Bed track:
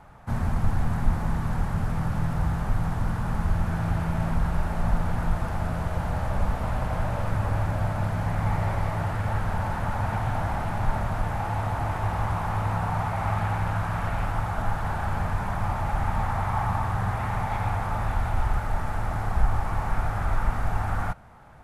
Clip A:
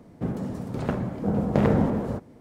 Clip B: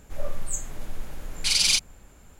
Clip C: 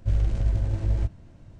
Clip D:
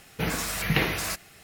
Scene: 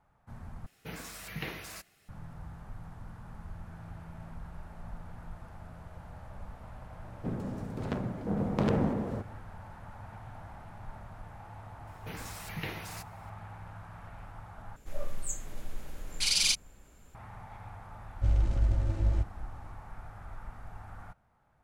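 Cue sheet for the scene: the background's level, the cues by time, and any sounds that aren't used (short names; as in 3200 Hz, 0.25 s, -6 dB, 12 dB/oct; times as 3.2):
bed track -19.5 dB
0.66 replace with D -14.5 dB
7.03 add A -6.5 dB + self-modulated delay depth 0.36 ms
11.87 add D -14.5 dB
14.76 replace with B -5.5 dB
18.16 add C -4 dB + comb 3.4 ms, depth 33%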